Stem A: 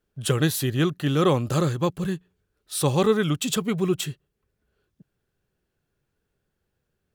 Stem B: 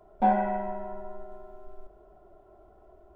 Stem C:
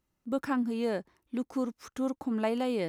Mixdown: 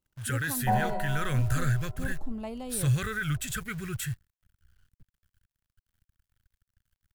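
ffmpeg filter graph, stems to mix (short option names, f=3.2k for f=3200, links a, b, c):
-filter_complex "[0:a]firequalizer=gain_entry='entry(100,0);entry(180,-19);entry(420,-14);entry(890,-25);entry(1500,8);entry(2900,-8);entry(4200,-8);entry(9400,2)':delay=0.05:min_phase=1,alimiter=limit=-23dB:level=0:latency=1:release=20,acrusher=bits=9:dc=4:mix=0:aa=0.000001,volume=0dB[a];[1:a]adelay=450,volume=-4dB[b];[2:a]equalizer=f=1.6k:w=2.4:g=-12,volume=-7dB[c];[a][b][c]amix=inputs=3:normalize=0,asubboost=boost=8.5:cutoff=130"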